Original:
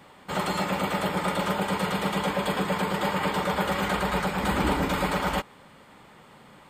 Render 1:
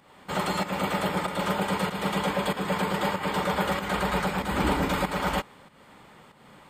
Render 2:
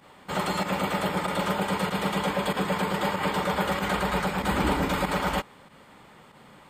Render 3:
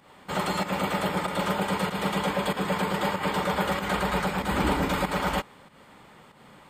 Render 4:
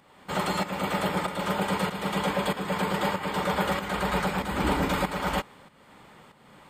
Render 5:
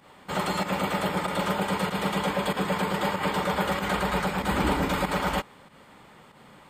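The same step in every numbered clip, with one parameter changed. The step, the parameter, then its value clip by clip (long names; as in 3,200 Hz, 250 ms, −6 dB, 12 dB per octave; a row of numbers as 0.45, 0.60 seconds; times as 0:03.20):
fake sidechain pumping, release: 254, 69, 162, 429, 103 milliseconds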